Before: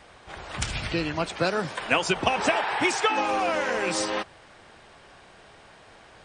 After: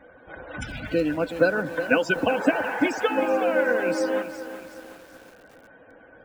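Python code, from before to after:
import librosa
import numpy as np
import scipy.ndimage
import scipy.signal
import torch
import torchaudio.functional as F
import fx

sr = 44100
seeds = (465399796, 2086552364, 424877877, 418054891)

y = fx.spec_topn(x, sr, count=64)
y = fx.small_body(y, sr, hz=(280.0, 500.0, 1500.0), ring_ms=45, db=16)
y = fx.echo_crushed(y, sr, ms=372, feedback_pct=55, bits=6, wet_db=-11.0)
y = y * 10.0 ** (-5.5 / 20.0)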